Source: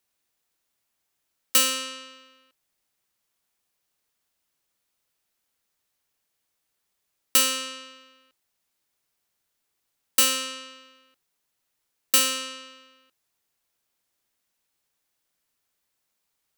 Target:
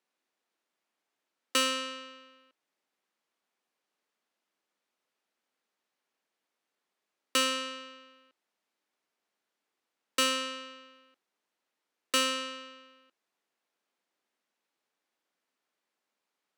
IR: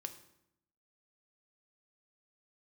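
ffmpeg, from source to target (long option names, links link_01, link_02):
-af "highpass=frequency=210:width=0.5412,highpass=frequency=210:width=1.3066,aemphasis=mode=reproduction:type=75fm"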